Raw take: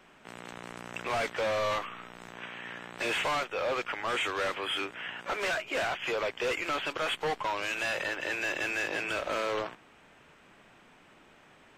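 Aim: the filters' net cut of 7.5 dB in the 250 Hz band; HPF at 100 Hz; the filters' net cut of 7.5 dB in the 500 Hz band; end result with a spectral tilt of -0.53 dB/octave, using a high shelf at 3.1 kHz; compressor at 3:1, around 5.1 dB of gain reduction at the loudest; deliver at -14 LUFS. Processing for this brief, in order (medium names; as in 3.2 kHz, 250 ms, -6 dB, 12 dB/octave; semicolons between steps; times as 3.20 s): high-pass 100 Hz; peaking EQ 250 Hz -7 dB; peaking EQ 500 Hz -8 dB; treble shelf 3.1 kHz +7.5 dB; compression 3:1, threshold -33 dBFS; trim +21 dB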